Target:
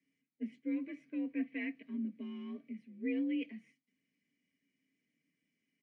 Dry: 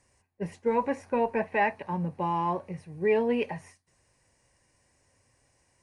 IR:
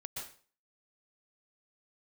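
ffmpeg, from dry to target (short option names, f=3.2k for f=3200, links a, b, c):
-filter_complex "[0:a]asplit=2[a][b];[1:a]atrim=start_sample=2205,afade=t=out:st=0.16:d=0.01,atrim=end_sample=7497[c];[b][c]afir=irnorm=-1:irlink=0,volume=-9.5dB[d];[a][d]amix=inputs=2:normalize=0,afreqshift=52,asplit=3[e][f][g];[e]bandpass=f=270:t=q:w=8,volume=0dB[h];[f]bandpass=f=2.29k:t=q:w=8,volume=-6dB[i];[g]bandpass=f=3.01k:t=q:w=8,volume=-9dB[j];[h][i][j]amix=inputs=3:normalize=0,aecho=1:1:4.4:0.45,volume=-2dB"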